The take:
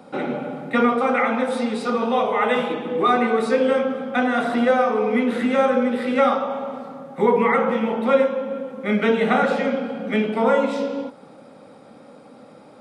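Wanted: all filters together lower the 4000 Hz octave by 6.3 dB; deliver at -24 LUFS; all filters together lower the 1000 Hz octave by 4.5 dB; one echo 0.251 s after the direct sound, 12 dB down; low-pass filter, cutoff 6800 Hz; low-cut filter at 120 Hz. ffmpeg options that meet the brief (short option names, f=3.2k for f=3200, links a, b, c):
-af "highpass=120,lowpass=6.8k,equalizer=f=1k:t=o:g=-6,equalizer=f=4k:t=o:g=-7.5,aecho=1:1:251:0.251,volume=-1.5dB"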